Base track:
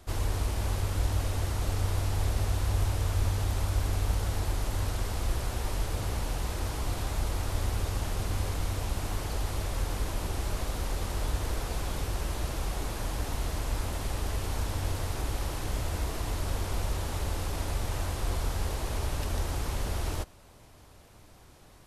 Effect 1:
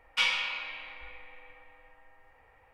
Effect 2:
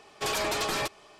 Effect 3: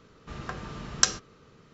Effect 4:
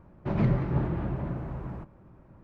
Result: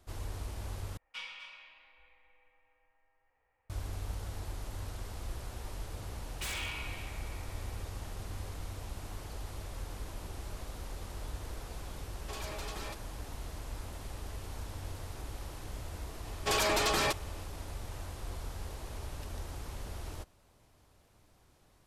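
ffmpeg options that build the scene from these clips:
-filter_complex "[1:a]asplit=2[a][b];[2:a]asplit=2[c][d];[0:a]volume=-10.5dB[e];[a]aecho=1:1:251:0.316[f];[b]aeval=exprs='0.0422*(abs(mod(val(0)/0.0422+3,4)-2)-1)':c=same[g];[e]asplit=2[h][i];[h]atrim=end=0.974[j];[f]atrim=end=2.73,asetpts=PTS-STARTPTS,volume=-17dB[k];[i]atrim=start=3.696[l];[g]atrim=end=2.73,asetpts=PTS-STARTPTS,volume=-6dB,afade=t=in:d=0.004:c=hsin,afade=t=out:st=2.726:d=0.004:c=hsin,adelay=6240[m];[c]atrim=end=1.19,asetpts=PTS-STARTPTS,volume=-14.5dB,afade=t=in:d=0.004:c=hsin,afade=t=out:st=1.186:d=0.004:c=hsin,adelay=12070[n];[d]atrim=end=1.19,asetpts=PTS-STARTPTS,afade=t=in:d=0.004:c=hsin,afade=t=out:st=1.186:d=0.004:c=hsin,adelay=16250[o];[j][k]acrossfade=d=0.004:c1=hsin:c2=hsin[p];[p][l]acrossfade=d=0.004:c1=hsin:c2=hsin[q];[q][m][n][o]amix=inputs=4:normalize=0"

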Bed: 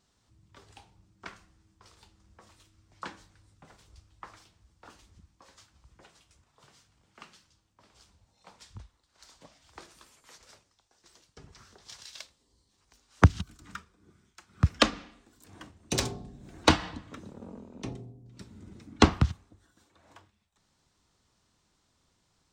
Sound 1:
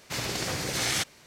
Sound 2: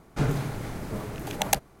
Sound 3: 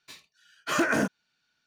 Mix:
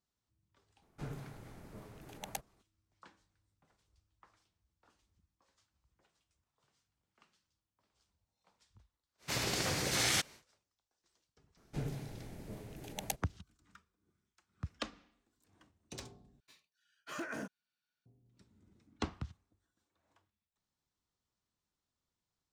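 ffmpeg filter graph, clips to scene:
-filter_complex "[2:a]asplit=2[a][b];[0:a]volume=-18.5dB[c];[b]equalizer=f=1.2k:t=o:w=0.9:g=-9.5[d];[c]asplit=2[e][f];[e]atrim=end=16.404[g];[3:a]atrim=end=1.66,asetpts=PTS-STARTPTS,volume=-17dB[h];[f]atrim=start=18.056[i];[a]atrim=end=1.8,asetpts=PTS-STARTPTS,volume=-18dB,afade=t=in:d=0.004:c=hsin,afade=t=out:st=1.796:d=0.004:c=hsin,adelay=820[j];[1:a]atrim=end=1.26,asetpts=PTS-STARTPTS,volume=-3.5dB,afade=t=in:d=0.1,afade=t=out:st=1.16:d=0.1,adelay=9180[k];[d]atrim=end=1.8,asetpts=PTS-STARTPTS,volume=-13dB,afade=t=in:d=0.004:c=hsin,afade=t=out:st=1.796:d=0.004:c=hsin,adelay=11570[l];[g][h]acrossfade=d=0.004:c1=hsin:c2=hsin[m];[m][i]acrossfade=d=0.004:c1=hsin:c2=hsin[n];[n][j][k][l]amix=inputs=4:normalize=0"

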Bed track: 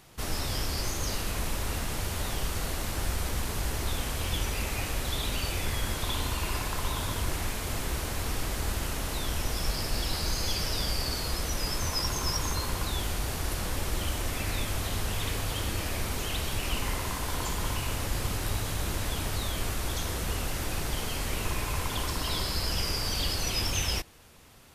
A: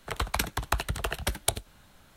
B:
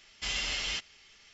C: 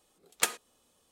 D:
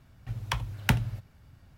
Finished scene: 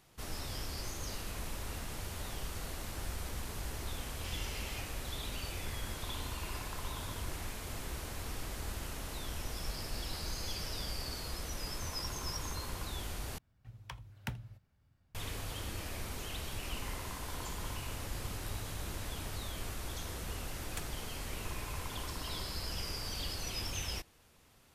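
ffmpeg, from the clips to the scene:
-filter_complex "[0:a]volume=-9.5dB[a];[3:a]alimiter=limit=-16dB:level=0:latency=1:release=71[b];[a]asplit=2[c][d];[c]atrim=end=13.384[e];[4:a]atrim=end=1.77,asetpts=PTS-STARTPTS,volume=-16dB[f];[d]atrim=start=15.146[g];[2:a]atrim=end=1.33,asetpts=PTS-STARTPTS,volume=-15dB,afade=t=in:d=0.004:c=hsin,afade=t=out:st=1.326:d=0.004:c=hsin,adelay=4020[h];[b]atrim=end=1.11,asetpts=PTS-STARTPTS,volume=-14dB,afade=t=in:d=0.004:c=hsin,afade=t=out:st=1.106:d=0.004:c=hsin,adelay=20340[i];[e][f]acrossfade=d=0.004:c1=hsin:c2=hsin[j];[j][g]acrossfade=d=0.004:c1=hsin:c2=hsin[k];[k][h][i]amix=inputs=3:normalize=0"

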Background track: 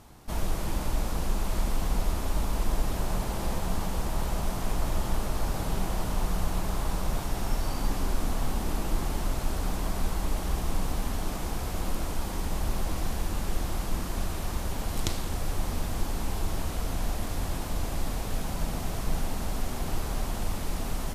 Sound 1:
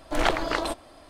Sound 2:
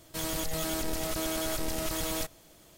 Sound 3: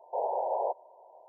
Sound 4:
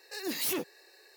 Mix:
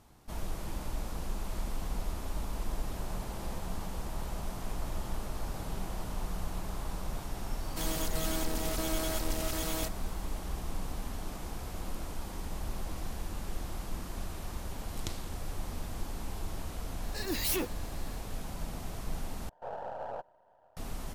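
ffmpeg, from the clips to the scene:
-filter_complex "[0:a]volume=-8dB[a];[2:a]acontrast=75[b];[3:a]aeval=exprs='if(lt(val(0),0),0.447*val(0),val(0))':c=same[c];[a]asplit=2[d][e];[d]atrim=end=19.494[f];[c]atrim=end=1.28,asetpts=PTS-STARTPTS,volume=-7dB[g];[e]atrim=start=20.766[h];[b]atrim=end=2.77,asetpts=PTS-STARTPTS,volume=-9.5dB,afade=t=in:d=0.004:c=hsin,afade=t=out:st=2.766:d=0.004:c=hsin,adelay=336042S[i];[4:a]atrim=end=1.16,asetpts=PTS-STARTPTS,afade=t=in:d=0.004:c=hsin,afade=t=out:st=1.156:d=0.004:c=hsin,adelay=17030[j];[f][g]acrossfade=d=0.004:c1=hsin:c2=hsin[k];[k][h]acrossfade=d=0.004:c1=hsin:c2=hsin[l];[l][i][j]amix=inputs=3:normalize=0"

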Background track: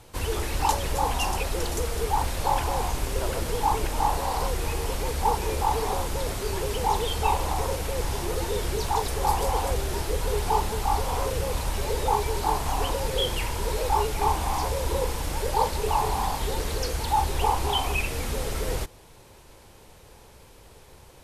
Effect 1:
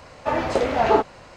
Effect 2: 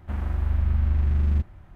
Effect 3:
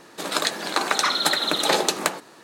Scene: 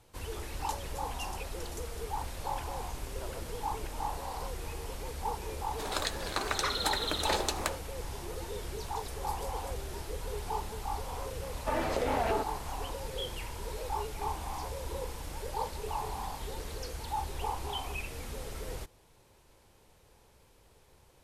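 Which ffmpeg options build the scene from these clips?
-filter_complex "[0:a]volume=-11.5dB[a];[3:a]agate=range=-33dB:threshold=-36dB:ratio=3:release=100:detection=peak[b];[1:a]acompressor=threshold=-19dB:ratio=6:attack=3.2:release=140:knee=1:detection=peak[c];[b]atrim=end=2.43,asetpts=PTS-STARTPTS,volume=-10.5dB,afade=t=in:d=0.004:c=hsin,afade=t=out:st=2.426:d=0.004:c=hsin,adelay=5600[d];[c]atrim=end=1.36,asetpts=PTS-STARTPTS,volume=-7dB,afade=t=in:d=0.004:c=hsin,afade=t=out:st=1.356:d=0.004:c=hsin,adelay=11410[e];[a][d][e]amix=inputs=3:normalize=0"

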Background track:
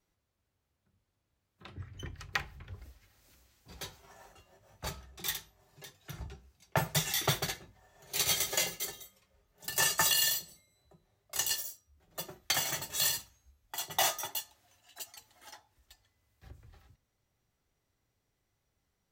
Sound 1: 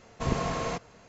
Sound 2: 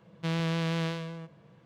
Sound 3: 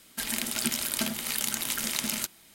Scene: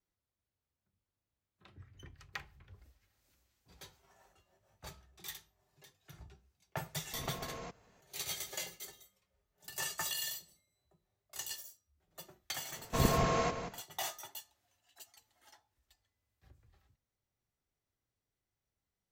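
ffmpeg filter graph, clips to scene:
-filter_complex "[1:a]asplit=2[a][b];[0:a]volume=-10.5dB[c];[a]alimiter=limit=-23.5dB:level=0:latency=1:release=31[d];[b]asplit=2[e][f];[f]adelay=180.8,volume=-8dB,highshelf=f=4k:g=-4.07[g];[e][g]amix=inputs=2:normalize=0[h];[d]atrim=end=1.08,asetpts=PTS-STARTPTS,volume=-12.5dB,afade=t=in:d=0.004:c=hsin,afade=t=out:st=1.076:d=0.004:c=hsin,adelay=6930[i];[h]atrim=end=1.08,asetpts=PTS-STARTPTS,volume=-1dB,afade=t=in:d=0.004:c=hsin,afade=t=out:st=1.076:d=0.004:c=hsin,adelay=12730[j];[c][i][j]amix=inputs=3:normalize=0"

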